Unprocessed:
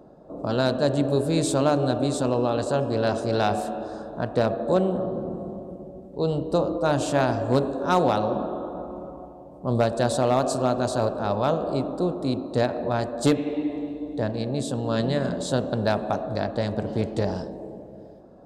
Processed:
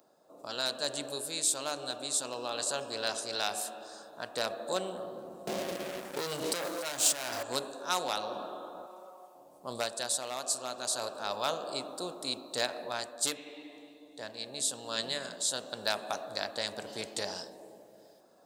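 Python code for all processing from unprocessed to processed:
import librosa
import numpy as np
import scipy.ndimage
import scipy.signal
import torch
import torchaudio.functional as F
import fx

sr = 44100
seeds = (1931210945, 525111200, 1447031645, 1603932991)

y = fx.chain(x, sr, fx.leveller(passes=3),
    fx.over_compress(threshold_db=-21.0, ratio=-1.0), at=(5.47, 7.43))
y = fx.chain(y, sr, fx.highpass(hz=230.0, slope=12),
    fx.low_shelf(hz=480.0, db=-8.0),
    fx.comb(ms=5.3, depth=0.59), at=(8.86, 9.35))
y = np.diff(y, prepend=0.0)
y = fx.rider(y, sr, range_db=4, speed_s=0.5)
y = y * 10.0 ** (6.5 / 20.0)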